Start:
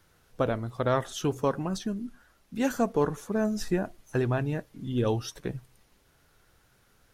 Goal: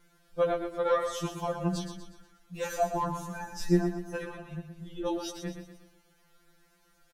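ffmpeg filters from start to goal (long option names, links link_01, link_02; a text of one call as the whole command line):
ffmpeg -i in.wav -filter_complex "[0:a]asettb=1/sr,asplit=3[link_01][link_02][link_03];[link_01]atrim=end=4.254[link_04];[link_02]atrim=start=4.25:end=5.06,asetpts=PTS-STARTPTS,afade=type=in:duration=0.004:curve=qsin,afade=type=out:start_time=0.806:duration=0.004:curve=qsin,acrossover=split=240[link_05][link_06];[link_06]acompressor=threshold=-39dB:ratio=4[link_07];[link_05][link_07]amix=inputs=2:normalize=0[link_08];[link_03]atrim=start=5.056[link_09];[link_04][link_08]acrossfade=duration=0.004:curve1=hsin:curve2=qsin[link_10];[link_10][link_09]acrossfade=duration=0.004:curve1=qsin:curve2=hsin,aecho=1:1:121|242|363|484|605:0.398|0.171|0.0736|0.0317|0.0136,afftfilt=real='re*2.83*eq(mod(b,8),0)':imag='im*2.83*eq(mod(b,8),0)':win_size=2048:overlap=0.75" out.wav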